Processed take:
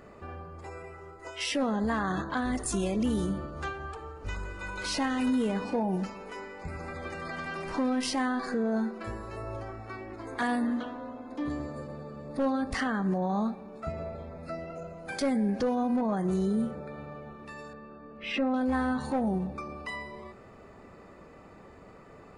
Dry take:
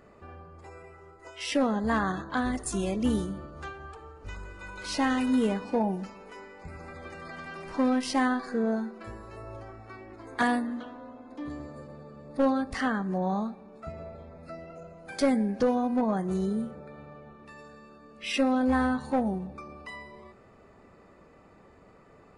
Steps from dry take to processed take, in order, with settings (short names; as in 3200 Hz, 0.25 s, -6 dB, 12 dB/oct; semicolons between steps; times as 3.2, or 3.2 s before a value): 17.73–18.54 Bessel low-pass 1800 Hz, order 2; limiter -25.5 dBFS, peak gain reduction 10.5 dB; gain +4.5 dB